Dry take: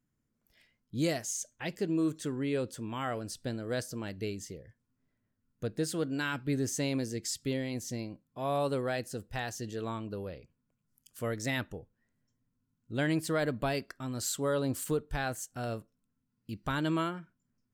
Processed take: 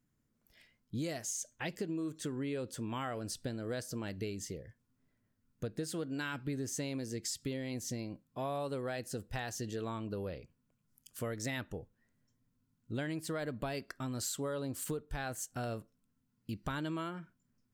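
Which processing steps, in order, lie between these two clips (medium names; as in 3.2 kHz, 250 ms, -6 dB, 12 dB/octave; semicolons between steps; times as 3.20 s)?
compression, threshold -37 dBFS, peak gain reduction 11.5 dB; trim +2 dB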